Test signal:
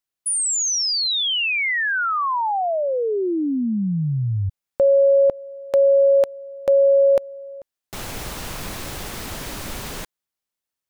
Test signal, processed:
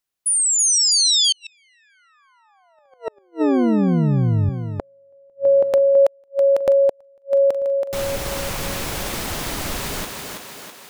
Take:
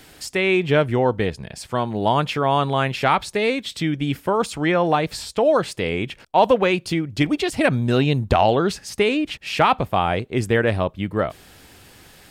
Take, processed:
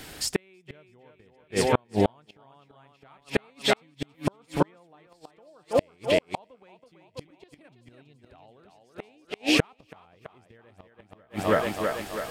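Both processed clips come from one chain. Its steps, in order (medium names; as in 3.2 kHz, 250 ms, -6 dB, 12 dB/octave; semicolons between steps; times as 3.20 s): thinning echo 327 ms, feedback 57%, high-pass 180 Hz, level -4 dB; inverted gate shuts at -12 dBFS, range -41 dB; trim +3.5 dB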